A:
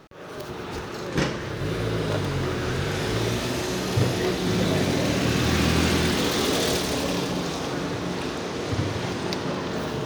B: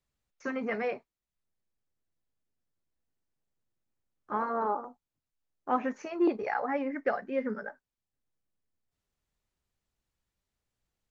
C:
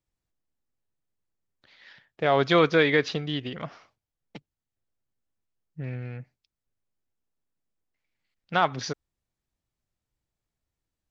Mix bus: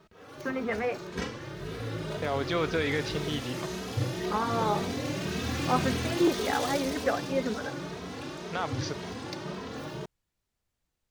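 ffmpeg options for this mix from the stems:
ffmpeg -i stem1.wav -i stem2.wav -i stem3.wav -filter_complex "[0:a]asplit=2[link_01][link_02];[link_02]adelay=2.8,afreqshift=1.9[link_03];[link_01][link_03]amix=inputs=2:normalize=1,volume=-6.5dB[link_04];[1:a]volume=1.5dB[link_05];[2:a]alimiter=limit=-15.5dB:level=0:latency=1,volume=-4dB[link_06];[link_04][link_05][link_06]amix=inputs=3:normalize=0" out.wav

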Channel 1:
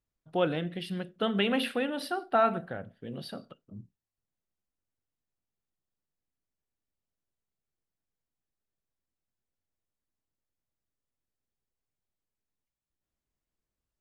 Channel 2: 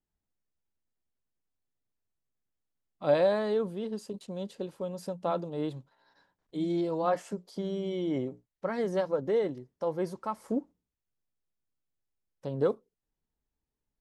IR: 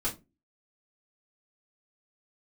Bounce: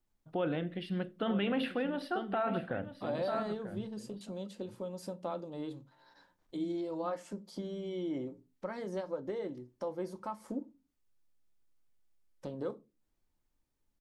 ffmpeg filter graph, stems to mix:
-filter_complex "[0:a]highshelf=frequency=4300:gain=-7,tremolo=f=0.76:d=0.4,adynamicequalizer=threshold=0.00708:dfrequency=2400:dqfactor=0.7:tfrequency=2400:tqfactor=0.7:attack=5:release=100:ratio=0.375:range=1.5:mode=cutabove:tftype=highshelf,volume=1.5dB,asplit=3[link_01][link_02][link_03];[link_02]volume=-21.5dB[link_04];[link_03]volume=-12.5dB[link_05];[1:a]highshelf=frequency=5200:gain=10.5,acompressor=threshold=-47dB:ratio=2,volume=1.5dB,asplit=2[link_06][link_07];[link_07]volume=-13dB[link_08];[2:a]atrim=start_sample=2205[link_09];[link_04][link_08]amix=inputs=2:normalize=0[link_10];[link_10][link_09]afir=irnorm=-1:irlink=0[link_11];[link_05]aecho=0:1:941:1[link_12];[link_01][link_06][link_11][link_12]amix=inputs=4:normalize=0,highshelf=frequency=6400:gain=-10.5,alimiter=limit=-24dB:level=0:latency=1:release=48"

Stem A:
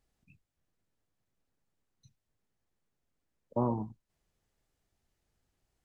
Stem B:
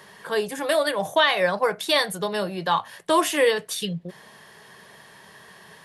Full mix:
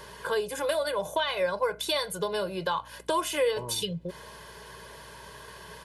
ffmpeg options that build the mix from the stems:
ffmpeg -i stem1.wav -i stem2.wav -filter_complex "[0:a]volume=-10dB[link_01];[1:a]bandreject=frequency=1900:width=9.6,acompressor=threshold=-32dB:ratio=3,volume=1.5dB[link_02];[link_01][link_02]amix=inputs=2:normalize=0,aecho=1:1:2:0.67,aeval=exprs='val(0)+0.00178*(sin(2*PI*60*n/s)+sin(2*PI*2*60*n/s)/2+sin(2*PI*3*60*n/s)/3+sin(2*PI*4*60*n/s)/4+sin(2*PI*5*60*n/s)/5)':channel_layout=same" out.wav

